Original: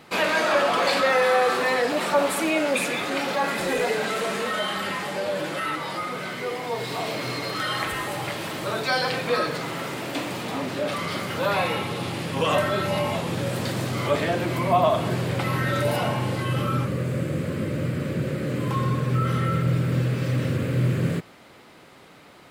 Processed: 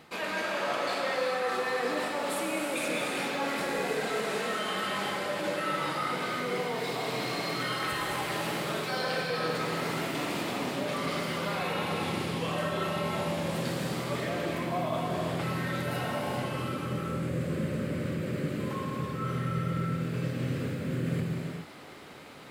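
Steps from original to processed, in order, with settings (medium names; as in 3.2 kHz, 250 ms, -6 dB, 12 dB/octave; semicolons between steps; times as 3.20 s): hum notches 50/100 Hz; reverse; compression, threshold -30 dBFS, peak gain reduction 14.5 dB; reverse; gated-style reverb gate 460 ms flat, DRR -1 dB; trim -2 dB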